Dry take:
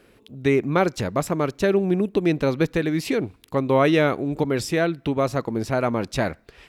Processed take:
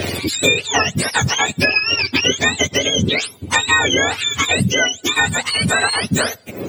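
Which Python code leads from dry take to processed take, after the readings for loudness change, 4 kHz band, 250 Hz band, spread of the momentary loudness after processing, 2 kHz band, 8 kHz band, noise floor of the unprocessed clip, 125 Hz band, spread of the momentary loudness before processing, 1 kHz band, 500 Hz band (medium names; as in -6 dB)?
+6.5 dB, +20.0 dB, -1.0 dB, 4 LU, +14.0 dB, +19.5 dB, -56 dBFS, +3.0 dB, 7 LU, +5.5 dB, -2.0 dB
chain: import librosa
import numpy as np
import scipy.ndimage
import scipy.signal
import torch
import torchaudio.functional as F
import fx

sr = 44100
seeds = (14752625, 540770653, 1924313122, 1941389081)

y = fx.octave_mirror(x, sr, pivot_hz=1000.0)
y = fx.band_squash(y, sr, depth_pct=100)
y = y * librosa.db_to_amplitude(8.0)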